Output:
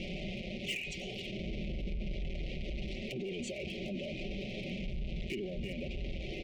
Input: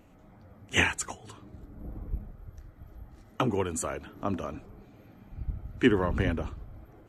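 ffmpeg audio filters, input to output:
-af "aeval=exprs='val(0)+0.5*0.0282*sgn(val(0))':c=same,lowpass=f=3400:w=0.5412,lowpass=f=3400:w=1.3066,aecho=1:1:5.3:0.92,bandreject=f=250.5:t=h:w=4,bandreject=f=501:t=h:w=4,bandreject=f=751.5:t=h:w=4,bandreject=f=1002:t=h:w=4,bandreject=f=1252.5:t=h:w=4,bandreject=f=1503:t=h:w=4,bandreject=f=1753.5:t=h:w=4,bandreject=f=2004:t=h:w=4,bandreject=f=2254.5:t=h:w=4,bandreject=f=2505:t=h:w=4,acompressor=threshold=0.0355:ratio=16,aexciter=amount=2.1:drive=6.3:freq=2100,aeval=exprs='0.188*(cos(1*acos(clip(val(0)/0.188,-1,1)))-cos(1*PI/2))+0.00531*(cos(6*acos(clip(val(0)/0.188,-1,1)))-cos(6*PI/2))+0.0106*(cos(7*acos(clip(val(0)/0.188,-1,1)))-cos(7*PI/2))+0.00211*(cos(8*acos(clip(val(0)/0.188,-1,1)))-cos(8*PI/2))':c=same,atempo=1.1,volume=22.4,asoftclip=hard,volume=0.0447,alimiter=level_in=5.31:limit=0.0631:level=0:latency=1:release=18,volume=0.188,asuperstop=centerf=1200:order=12:qfactor=0.82,volume=2.37"

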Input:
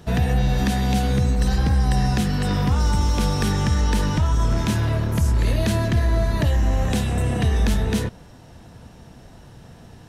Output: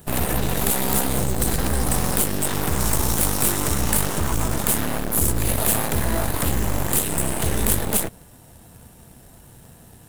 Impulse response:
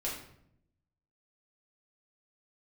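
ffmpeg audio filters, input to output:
-af "aeval=exprs='0.299*(cos(1*acos(clip(val(0)/0.299,-1,1)))-cos(1*PI/2))+0.0473*(cos(2*acos(clip(val(0)/0.299,-1,1)))-cos(2*PI/2))+0.075*(cos(3*acos(clip(val(0)/0.299,-1,1)))-cos(3*PI/2))+0.0668*(cos(6*acos(clip(val(0)/0.299,-1,1)))-cos(6*PI/2))+0.0531*(cos(7*acos(clip(val(0)/0.299,-1,1)))-cos(7*PI/2))':c=same,aexciter=amount=9.2:drive=3.4:freq=7800,acrusher=bits=3:mode=log:mix=0:aa=0.000001,volume=0.668"

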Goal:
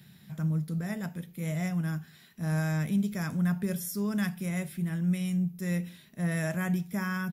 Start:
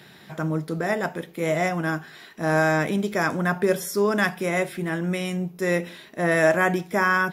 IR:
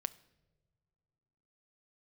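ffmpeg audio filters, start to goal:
-af "firequalizer=gain_entry='entry(190,0);entry(320,-17);entry(770,-18);entry(2400,-12);entry(13000,-1)':delay=0.05:min_phase=1"

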